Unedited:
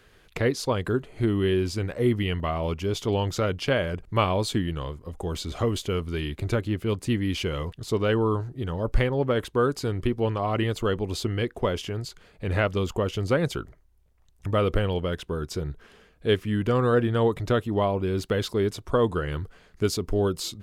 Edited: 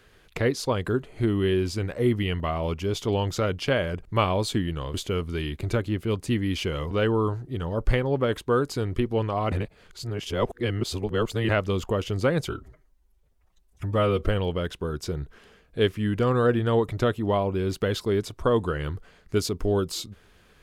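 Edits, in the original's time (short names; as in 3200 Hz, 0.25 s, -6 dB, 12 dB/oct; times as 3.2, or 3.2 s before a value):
4.94–5.73 cut
7.7–7.98 cut
10.59–12.56 reverse
13.57–14.75 stretch 1.5×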